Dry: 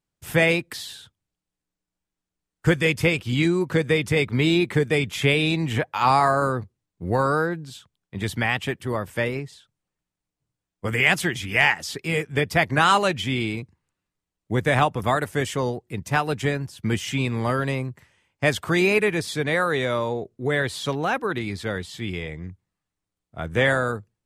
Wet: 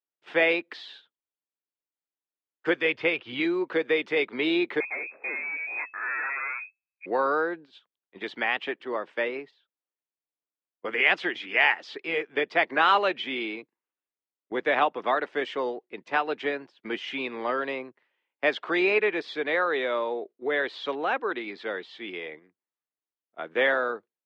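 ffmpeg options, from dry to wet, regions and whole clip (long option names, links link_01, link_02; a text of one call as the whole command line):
ffmpeg -i in.wav -filter_complex "[0:a]asettb=1/sr,asplit=3[link_01][link_02][link_03];[link_01]atrim=end=2.824[link_04];[link_02]atrim=start=2.82:end=3.4,asetpts=PTS-STARTPTS,afade=type=in:duration=0.004:curve=qsin,afade=type=out:start_time=0.576:duration=0.004:curve=qsin,lowpass=4600,lowshelf=frequency=140:width_type=q:width=1.5:gain=11.5[link_05];[link_03]atrim=start=3.396[link_06];[link_04][link_05]acrossfade=duration=0.004:curve1=hsin:curve2=qsin[link_07];[link_07][link_06]acrossfade=duration=0.004:curve1=qsin:curve2=hsin,asettb=1/sr,asplit=3[link_08][link_09][link_10];[link_08]atrim=end=4.804[link_11];[link_09]atrim=start=4.8:end=7.06,asetpts=PTS-STARTPTS,afade=type=in:duration=0.004:curve=qsin,afade=type=out:start_time=2.256:duration=0.004:curve=qsin,flanger=delay=15:depth=5.9:speed=1.3,aeval=exprs='(tanh(17.8*val(0)+0.25)-tanh(0.25))/17.8':channel_layout=same,lowpass=frequency=2200:width_type=q:width=0.5098,lowpass=frequency=2200:width_type=q:width=0.6013,lowpass=frequency=2200:width_type=q:width=0.9,lowpass=frequency=2200:width_type=q:width=2.563,afreqshift=-2600[link_12];[link_10]atrim=start=7.056[link_13];[link_11][link_12]acrossfade=duration=0.004:curve1=hsin:curve2=qsin[link_14];[link_14][link_13]acrossfade=duration=0.004:curve1=qsin:curve2=hsin,highpass=frequency=310:width=0.5412,highpass=frequency=310:width=1.3066,agate=range=-10dB:threshold=-41dB:ratio=16:detection=peak,lowpass=frequency=3700:width=0.5412,lowpass=frequency=3700:width=1.3066,volume=-2.5dB" out.wav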